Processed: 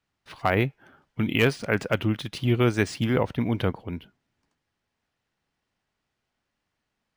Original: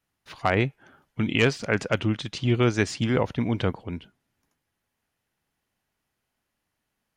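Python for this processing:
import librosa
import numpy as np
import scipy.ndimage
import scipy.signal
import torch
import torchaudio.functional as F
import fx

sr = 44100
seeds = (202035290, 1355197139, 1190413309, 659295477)

y = np.interp(np.arange(len(x)), np.arange(len(x))[::3], x[::3])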